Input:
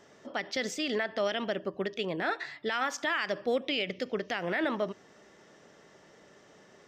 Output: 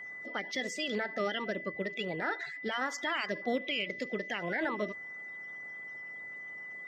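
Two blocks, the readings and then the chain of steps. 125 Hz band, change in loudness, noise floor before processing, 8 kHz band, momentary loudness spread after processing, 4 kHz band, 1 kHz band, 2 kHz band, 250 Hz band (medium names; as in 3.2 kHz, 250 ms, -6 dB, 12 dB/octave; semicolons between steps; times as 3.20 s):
-2.0 dB, -3.5 dB, -59 dBFS, -3.5 dB, 9 LU, -2.5 dB, -2.5 dB, 0.0 dB, -2.5 dB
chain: coarse spectral quantiser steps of 30 dB; whistle 2 kHz -39 dBFS; trim -2.5 dB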